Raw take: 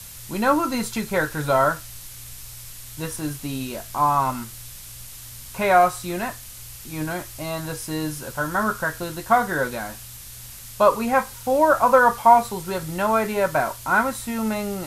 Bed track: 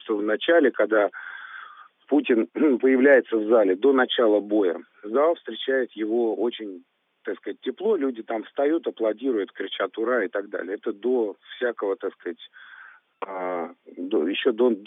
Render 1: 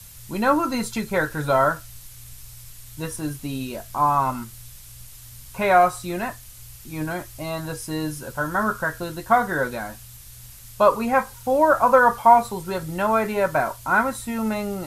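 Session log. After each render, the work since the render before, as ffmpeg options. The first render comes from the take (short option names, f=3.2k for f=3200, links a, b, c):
-af "afftdn=nr=6:nf=-40"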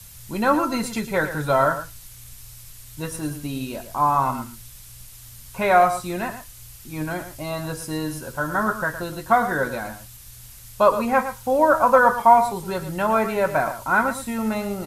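-af "aecho=1:1:113:0.282"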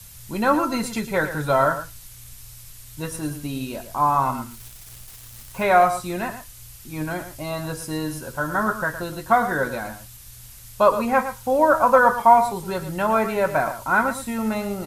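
-filter_complex "[0:a]asettb=1/sr,asplit=3[a][b][c];[a]atrim=end=4.514[d];[b]atrim=start=4.51:end=5.64,asetpts=PTS-STARTPTS,afade=t=in:d=0.004:c=qsin,afade=t=out:st=1.126:d=0.004:c=qsin,acrusher=bits=8:dc=4:mix=0:aa=0.000001[e];[c]atrim=start=5.636[f];[d][e]acrossfade=d=0.004:c1=hsin:c2=qsin[g];[g][f]acrossfade=d=0.004:c1=qsin:c2=hsin"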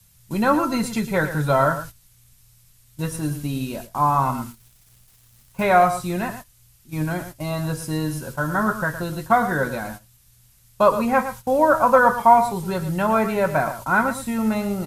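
-af "agate=range=-13dB:threshold=-36dB:ratio=16:detection=peak,equalizer=f=160:w=1.5:g=6.5"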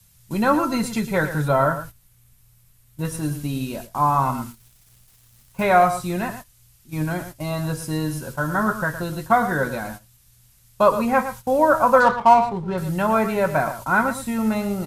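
-filter_complex "[0:a]asettb=1/sr,asplit=3[a][b][c];[a]atrim=end=1.484[d];[b]atrim=start=1.48:end=3.05,asetpts=PTS-STARTPTS,afade=t=in:d=0.004:c=qsin,afade=t=out:st=1.566:d=0.004:c=qsin,equalizer=f=5.5k:t=o:w=2.1:g=-6.5[e];[c]atrim=start=3.046[f];[d][e]acrossfade=d=0.004:c1=hsin:c2=qsin[g];[g][f]acrossfade=d=0.004:c1=qsin:c2=hsin,asettb=1/sr,asplit=3[h][i][j];[h]atrim=end=12.004[k];[i]atrim=start=12:end=12.78,asetpts=PTS-STARTPTS,afade=t=in:d=0.004:c=qsin,afade=t=out:st=0.776:d=0.004:c=qsin,adynamicsmooth=sensitivity=2:basefreq=1.5k[l];[j]atrim=start=12.776[m];[k][l]acrossfade=d=0.004:c1=hsin:c2=qsin[n];[n][m]acrossfade=d=0.004:c1=qsin:c2=hsin"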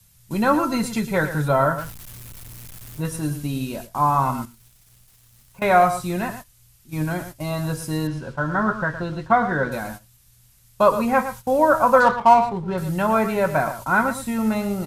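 -filter_complex "[0:a]asettb=1/sr,asplit=3[a][b][c];[a]atrim=end=1.784[d];[b]atrim=start=1.78:end=3.01,asetpts=PTS-STARTPTS,afade=t=in:d=0.004:c=qsin,afade=t=out:st=1.226:d=0.004:c=qsin,aeval=exprs='val(0)+0.5*0.0188*sgn(val(0))':c=same[e];[c]atrim=start=3.006[f];[d][e]acrossfade=d=0.004:c1=hsin:c2=qsin[g];[g][f]acrossfade=d=0.004:c1=qsin:c2=hsin,asettb=1/sr,asplit=3[h][i][j];[h]atrim=end=4.454[k];[i]atrim=start=4.45:end=5.62,asetpts=PTS-STARTPTS,afade=t=in:d=0.004:c=qsin,afade=t=out:st=1.166:d=0.004:c=qsin,acompressor=threshold=-42dB:ratio=5:attack=3.2:release=140:knee=1:detection=peak[l];[j]atrim=start=5.616[m];[k][l]acrossfade=d=0.004:c1=hsin:c2=qsin[n];[n][m]acrossfade=d=0.004:c1=qsin:c2=hsin,asettb=1/sr,asplit=3[o][p][q];[o]atrim=end=8.074[r];[p]atrim=start=8.07:end=9.72,asetpts=PTS-STARTPTS,afade=t=in:d=0.004:c=qsin,afade=t=out:st=1.646:d=0.004:c=qsin,lowpass=3.8k[s];[q]atrim=start=9.716[t];[r][s]acrossfade=d=0.004:c1=hsin:c2=qsin[u];[u][t]acrossfade=d=0.004:c1=qsin:c2=hsin"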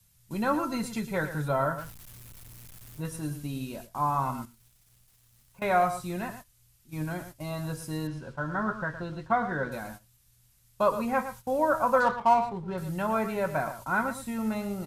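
-af "volume=-8.5dB"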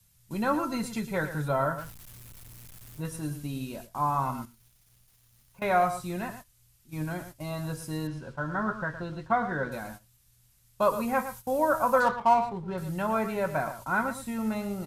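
-filter_complex "[0:a]asettb=1/sr,asplit=3[a][b][c];[a]atrim=end=4.264[d];[b]atrim=start=4.26:end=5.83,asetpts=PTS-STARTPTS,afade=t=in:d=0.004:c=qsin,afade=t=out:st=1.566:d=0.004:c=qsin,bandreject=f=7.8k:w=11[e];[c]atrim=start=5.826[f];[d][e]acrossfade=d=0.004:c1=hsin:c2=qsin[g];[g][f]acrossfade=d=0.004:c1=qsin:c2=hsin,asettb=1/sr,asplit=3[h][i][j];[h]atrim=end=10.824[k];[i]atrim=start=10.82:end=12.1,asetpts=PTS-STARTPTS,afade=t=in:d=0.004:c=qsin,afade=t=out:st=1.276:d=0.004:c=qsin,highshelf=f=8.6k:g=9[l];[j]atrim=start=12.096[m];[k][l]acrossfade=d=0.004:c1=hsin:c2=qsin[n];[n][m]acrossfade=d=0.004:c1=qsin:c2=hsin"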